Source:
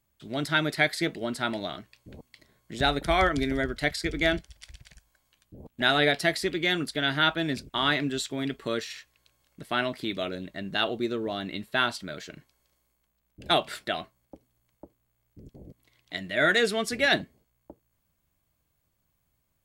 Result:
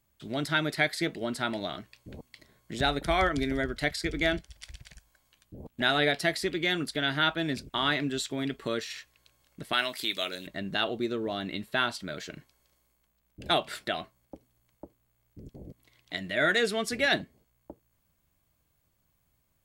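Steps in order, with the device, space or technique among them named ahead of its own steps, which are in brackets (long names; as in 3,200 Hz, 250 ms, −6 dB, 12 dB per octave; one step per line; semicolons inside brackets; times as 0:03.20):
0:09.73–0:10.47: spectral tilt +4 dB per octave
parallel compression (in parallel at −0.5 dB: downward compressor, threshold −35 dBFS, peak gain reduction 16.5 dB)
on the sum: level −4 dB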